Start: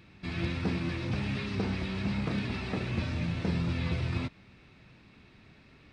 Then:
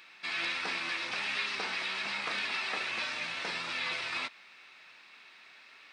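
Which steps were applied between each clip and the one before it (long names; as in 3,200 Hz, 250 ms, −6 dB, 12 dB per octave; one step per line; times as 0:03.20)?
high-pass filter 1,100 Hz 12 dB per octave
level +8 dB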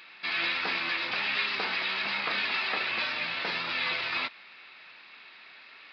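downsampling to 11,025 Hz
level +4.5 dB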